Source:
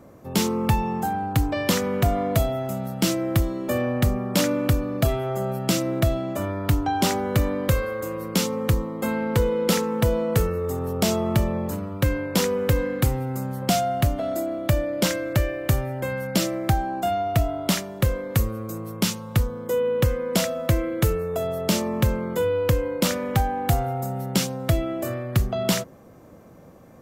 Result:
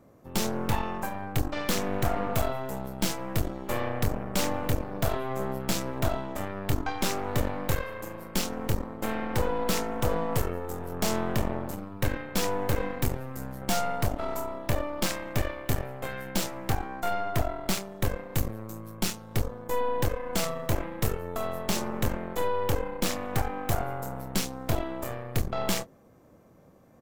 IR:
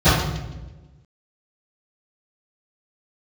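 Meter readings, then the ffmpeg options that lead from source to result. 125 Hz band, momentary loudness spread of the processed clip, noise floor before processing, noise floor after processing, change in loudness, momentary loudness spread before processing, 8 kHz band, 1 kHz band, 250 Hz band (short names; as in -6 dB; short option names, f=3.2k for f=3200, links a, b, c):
-8.5 dB, 5 LU, -46 dBFS, -54 dBFS, -6.5 dB, 5 LU, -4.5 dB, -4.0 dB, -8.0 dB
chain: -filter_complex "[0:a]asplit=2[a][b];[b]adelay=26,volume=-11dB[c];[a][c]amix=inputs=2:normalize=0,aeval=exprs='0.473*(cos(1*acos(clip(val(0)/0.473,-1,1)))-cos(1*PI/2))+0.119*(cos(8*acos(clip(val(0)/0.473,-1,1)))-cos(8*PI/2))':c=same,volume=-9dB"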